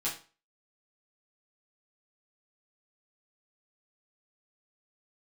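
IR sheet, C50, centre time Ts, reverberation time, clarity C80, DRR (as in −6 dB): 8.5 dB, 26 ms, 0.35 s, 13.5 dB, −8.0 dB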